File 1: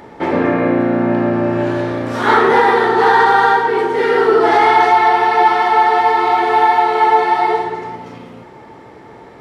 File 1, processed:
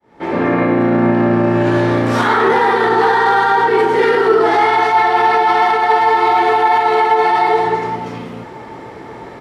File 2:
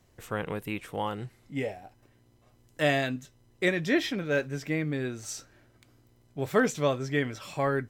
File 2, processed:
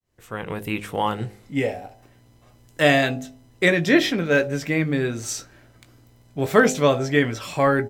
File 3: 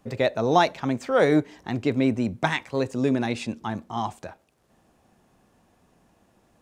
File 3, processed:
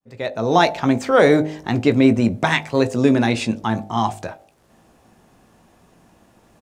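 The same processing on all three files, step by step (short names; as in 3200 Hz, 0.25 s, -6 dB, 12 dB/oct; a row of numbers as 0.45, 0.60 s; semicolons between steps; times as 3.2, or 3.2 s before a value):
opening faded in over 0.83 s; limiter -11.5 dBFS; doubler 18 ms -12 dB; de-hum 51.41 Hz, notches 17; normalise peaks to -2 dBFS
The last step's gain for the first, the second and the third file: +6.5, +8.5, +8.5 dB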